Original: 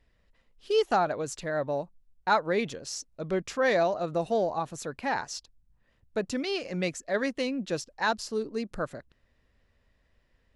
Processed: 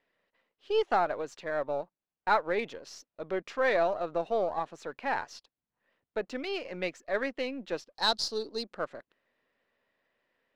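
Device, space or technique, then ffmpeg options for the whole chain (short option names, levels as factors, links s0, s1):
crystal radio: -filter_complex "[0:a]asettb=1/sr,asplit=3[s0][s1][s2];[s0]atrim=end=7.954[s3];[s1]atrim=start=7.95:end=8.64,asetpts=PTS-STARTPTS,afade=t=in:d=0.004:c=qsin,afade=t=out:st=0.686:d=0.004:c=qsin,highshelf=f=3100:t=q:w=3:g=11[s4];[s2]atrim=start=8.636[s5];[s3][s4]acrossfade=d=0.004:c1=hsin:c2=qsin[s6];[s6][s5]acrossfade=d=0.004:c1=qsin:c2=hsin,highpass=350,lowpass=3400,aeval=exprs='if(lt(val(0),0),0.708*val(0),val(0))':c=same"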